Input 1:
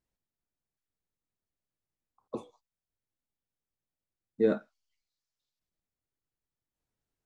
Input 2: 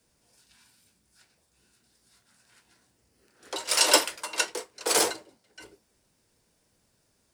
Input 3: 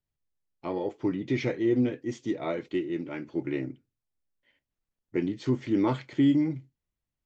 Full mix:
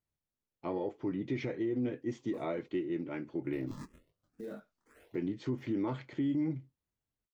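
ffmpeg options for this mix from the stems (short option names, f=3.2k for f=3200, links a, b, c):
-filter_complex "[0:a]acrusher=bits=7:mode=log:mix=0:aa=0.000001,volume=-5.5dB[a];[1:a]acrusher=samples=33:mix=1:aa=0.000001:lfo=1:lforange=52.8:lforate=0.33,asplit=2[b][c];[c]afreqshift=2[d];[b][d]amix=inputs=2:normalize=1,volume=-14dB[e];[2:a]highpass=43,highshelf=f=3.1k:g=-8.5,volume=-2.5dB,asplit=2[f][g];[g]apad=whole_len=323558[h];[e][h]sidechaingate=range=-20dB:threshold=-52dB:ratio=16:detection=peak[i];[a][i]amix=inputs=2:normalize=0,flanger=delay=19.5:depth=5:speed=2.4,alimiter=level_in=11dB:limit=-24dB:level=0:latency=1:release=51,volume=-11dB,volume=0dB[j];[f][j]amix=inputs=2:normalize=0,alimiter=level_in=1.5dB:limit=-24dB:level=0:latency=1:release=108,volume=-1.5dB"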